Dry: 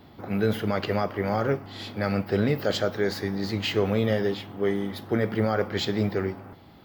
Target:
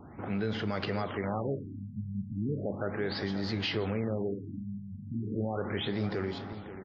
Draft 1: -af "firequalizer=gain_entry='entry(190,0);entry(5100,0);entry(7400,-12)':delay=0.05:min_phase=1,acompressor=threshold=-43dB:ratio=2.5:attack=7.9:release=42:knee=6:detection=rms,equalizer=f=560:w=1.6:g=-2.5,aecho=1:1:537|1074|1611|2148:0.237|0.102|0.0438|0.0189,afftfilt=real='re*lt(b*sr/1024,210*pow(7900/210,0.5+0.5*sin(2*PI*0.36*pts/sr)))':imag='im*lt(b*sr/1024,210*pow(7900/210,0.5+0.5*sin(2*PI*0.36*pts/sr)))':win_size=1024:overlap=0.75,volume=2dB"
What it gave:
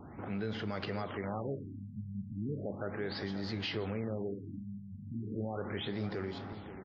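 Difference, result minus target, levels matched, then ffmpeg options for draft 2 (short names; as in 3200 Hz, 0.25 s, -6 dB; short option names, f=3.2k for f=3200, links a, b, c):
compressor: peak gain reduction +5 dB
-af "firequalizer=gain_entry='entry(190,0);entry(5100,0);entry(7400,-12)':delay=0.05:min_phase=1,acompressor=threshold=-35dB:ratio=2.5:attack=7.9:release=42:knee=6:detection=rms,equalizer=f=560:w=1.6:g=-2.5,aecho=1:1:537|1074|1611|2148:0.237|0.102|0.0438|0.0189,afftfilt=real='re*lt(b*sr/1024,210*pow(7900/210,0.5+0.5*sin(2*PI*0.36*pts/sr)))':imag='im*lt(b*sr/1024,210*pow(7900/210,0.5+0.5*sin(2*PI*0.36*pts/sr)))':win_size=1024:overlap=0.75,volume=2dB"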